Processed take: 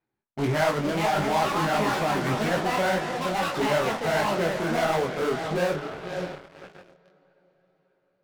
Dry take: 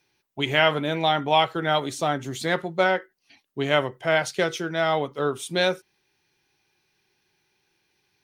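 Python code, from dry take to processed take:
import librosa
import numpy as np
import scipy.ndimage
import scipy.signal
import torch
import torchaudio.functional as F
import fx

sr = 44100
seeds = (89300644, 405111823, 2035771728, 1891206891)

p1 = scipy.signal.medfilt(x, 15)
p2 = scipy.signal.sosfilt(scipy.signal.butter(2, 3500.0, 'lowpass', fs=sr, output='sos'), p1)
p3 = p2 + fx.echo_diffused(p2, sr, ms=551, feedback_pct=44, wet_db=-14.0, dry=0)
p4 = fx.echo_pitch(p3, sr, ms=566, semitones=5, count=3, db_per_echo=-6.0)
p5 = fx.fuzz(p4, sr, gain_db=37.0, gate_db=-42.0)
p6 = p4 + (p5 * 10.0 ** (-4.5 / 20.0))
p7 = fx.peak_eq(p6, sr, hz=200.0, db=4.0, octaves=0.5)
p8 = fx.detune_double(p7, sr, cents=57)
y = p8 * 10.0 ** (-5.5 / 20.0)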